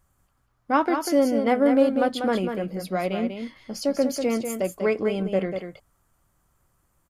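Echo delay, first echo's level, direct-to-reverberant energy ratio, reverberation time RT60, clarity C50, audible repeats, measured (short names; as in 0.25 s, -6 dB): 0.193 s, -7.0 dB, none, none, none, 1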